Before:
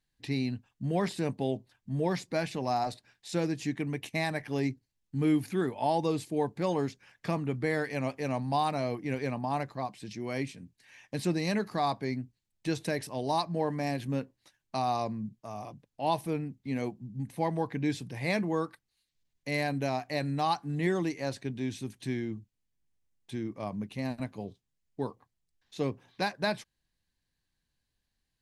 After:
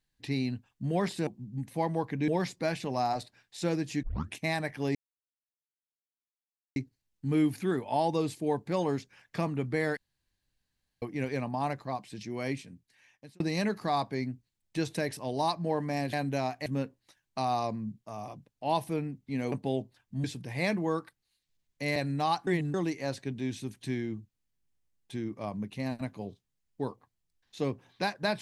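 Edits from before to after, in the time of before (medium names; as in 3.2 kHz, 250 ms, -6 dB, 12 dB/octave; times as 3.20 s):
1.27–1.99 s: swap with 16.89–17.90 s
3.74 s: tape start 0.33 s
4.66 s: insert silence 1.81 s
7.87–8.92 s: room tone
10.44–11.30 s: fade out
19.62–20.15 s: move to 14.03 s
20.66–20.93 s: reverse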